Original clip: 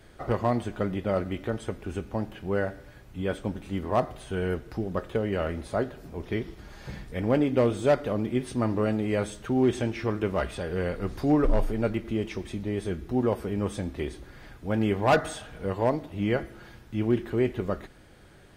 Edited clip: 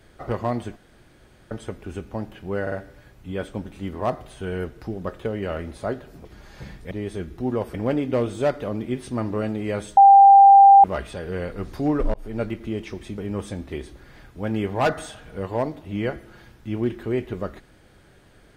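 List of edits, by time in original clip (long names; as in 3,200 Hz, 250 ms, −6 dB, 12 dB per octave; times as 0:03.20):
0:00.76–0:01.51: fill with room tone
0:02.62: stutter 0.05 s, 3 plays
0:06.15–0:06.52: remove
0:09.41–0:10.28: beep over 792 Hz −6.5 dBFS
0:11.58–0:11.83: fade in
0:12.62–0:13.45: move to 0:07.18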